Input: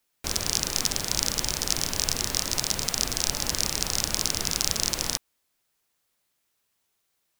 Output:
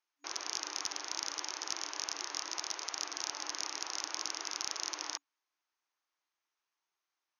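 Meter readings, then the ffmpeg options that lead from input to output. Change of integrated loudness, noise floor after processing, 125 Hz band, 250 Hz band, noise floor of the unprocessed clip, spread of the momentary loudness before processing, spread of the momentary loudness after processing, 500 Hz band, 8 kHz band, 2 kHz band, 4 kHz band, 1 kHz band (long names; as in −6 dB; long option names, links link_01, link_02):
−12.0 dB, below −85 dBFS, below −30 dB, −17.0 dB, −75 dBFS, 2 LU, 2 LU, −14.0 dB, −12.0 dB, −8.5 dB, −11.5 dB, −6.0 dB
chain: -af "afftfilt=real='re*between(b*sr/4096,280,6700)':imag='im*between(b*sr/4096,280,6700)':win_size=4096:overlap=0.75,aeval=exprs='0.668*(cos(1*acos(clip(val(0)/0.668,-1,1)))-cos(1*PI/2))+0.0376*(cos(2*acos(clip(val(0)/0.668,-1,1)))-cos(2*PI/2))':channel_layout=same,equalizer=frequency=500:width_type=o:width=1:gain=-9,equalizer=frequency=1000:width_type=o:width=1:gain=6,equalizer=frequency=4000:width_type=o:width=1:gain=-4,volume=-8.5dB"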